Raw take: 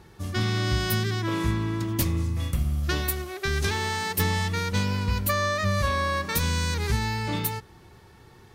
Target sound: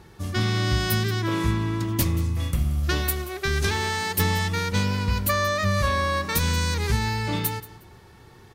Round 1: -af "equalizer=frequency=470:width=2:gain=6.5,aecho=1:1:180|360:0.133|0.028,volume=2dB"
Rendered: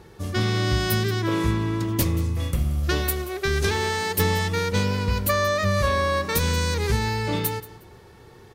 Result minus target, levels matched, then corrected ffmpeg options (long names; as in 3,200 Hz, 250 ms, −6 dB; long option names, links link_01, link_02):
500 Hz band +3.5 dB
-af "aecho=1:1:180|360:0.133|0.028,volume=2dB"